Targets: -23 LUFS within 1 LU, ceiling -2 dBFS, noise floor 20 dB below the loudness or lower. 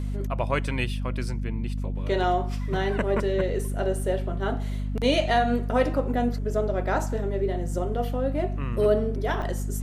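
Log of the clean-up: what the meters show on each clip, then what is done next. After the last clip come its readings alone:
dropouts 1; longest dropout 4.9 ms; hum 50 Hz; highest harmonic 250 Hz; hum level -26 dBFS; loudness -26.5 LUFS; peak level -10.0 dBFS; loudness target -23.0 LUFS
-> interpolate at 9.42 s, 4.9 ms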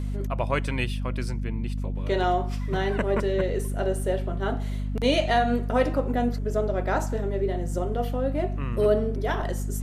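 dropouts 0; hum 50 Hz; highest harmonic 250 Hz; hum level -26 dBFS
-> hum notches 50/100/150/200/250 Hz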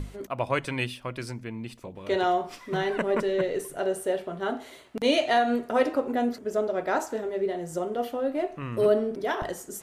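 hum not found; loudness -28.0 LUFS; peak level -10.5 dBFS; loudness target -23.0 LUFS
-> trim +5 dB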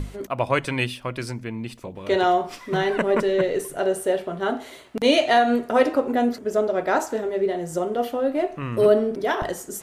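loudness -23.0 LUFS; peak level -5.5 dBFS; noise floor -44 dBFS

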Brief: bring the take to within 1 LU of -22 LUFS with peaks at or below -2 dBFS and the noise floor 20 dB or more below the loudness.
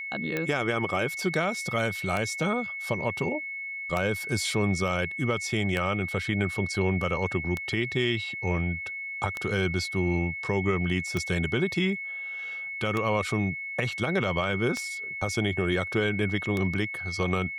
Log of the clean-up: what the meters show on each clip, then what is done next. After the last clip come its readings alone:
clicks found 10; steady tone 2.2 kHz; tone level -33 dBFS; loudness -28.0 LUFS; peak level -9.5 dBFS; loudness target -22.0 LUFS
-> de-click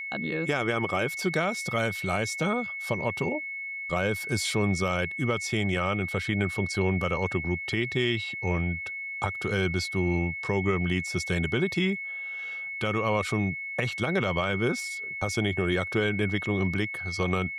clicks found 0; steady tone 2.2 kHz; tone level -33 dBFS
-> band-stop 2.2 kHz, Q 30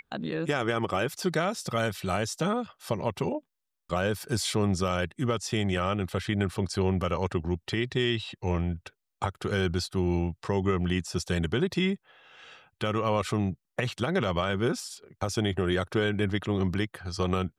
steady tone not found; loudness -29.5 LUFS; peak level -13.5 dBFS; loudness target -22.0 LUFS
-> trim +7.5 dB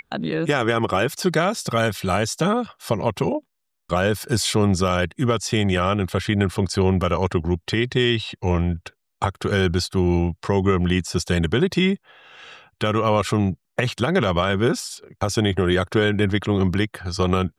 loudness -22.0 LUFS; peak level -6.0 dBFS; noise floor -75 dBFS

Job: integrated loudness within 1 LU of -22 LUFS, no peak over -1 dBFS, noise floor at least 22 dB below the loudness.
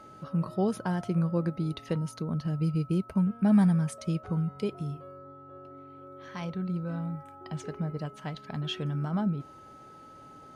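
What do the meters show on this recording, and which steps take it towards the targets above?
steady tone 1.3 kHz; tone level -49 dBFS; loudness -30.5 LUFS; peak level -13.5 dBFS; loudness target -22.0 LUFS
-> band-stop 1.3 kHz, Q 30; trim +8.5 dB

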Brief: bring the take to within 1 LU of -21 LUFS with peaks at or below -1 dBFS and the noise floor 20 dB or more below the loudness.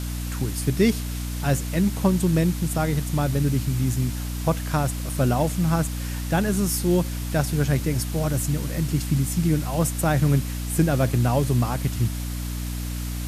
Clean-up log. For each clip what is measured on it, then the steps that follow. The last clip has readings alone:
hum 60 Hz; highest harmonic 300 Hz; hum level -27 dBFS; noise floor -29 dBFS; noise floor target -44 dBFS; loudness -24.0 LUFS; peak level -7.5 dBFS; loudness target -21.0 LUFS
-> de-hum 60 Hz, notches 5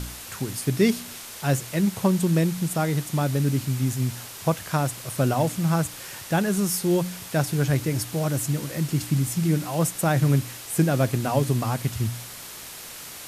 hum not found; noise floor -40 dBFS; noise floor target -45 dBFS
-> noise reduction 6 dB, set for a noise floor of -40 dBFS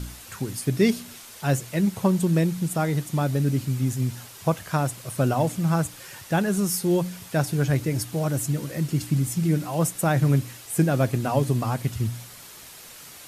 noise floor -44 dBFS; noise floor target -45 dBFS
-> noise reduction 6 dB, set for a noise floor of -44 dBFS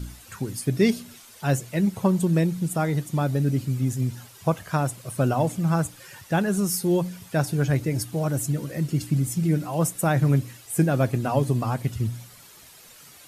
noise floor -49 dBFS; loudness -25.0 LUFS; peak level -8.0 dBFS; loudness target -21.0 LUFS
-> trim +4 dB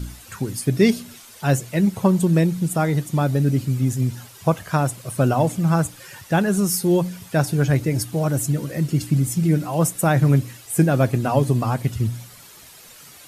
loudness -21.0 LUFS; peak level -4.0 dBFS; noise floor -45 dBFS

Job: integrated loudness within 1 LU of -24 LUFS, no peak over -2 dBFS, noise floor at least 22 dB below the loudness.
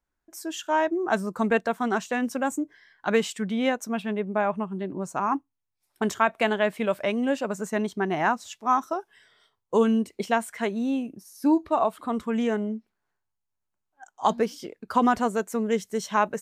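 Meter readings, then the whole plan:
loudness -26.5 LUFS; peak level -8.5 dBFS; loudness target -24.0 LUFS
-> trim +2.5 dB

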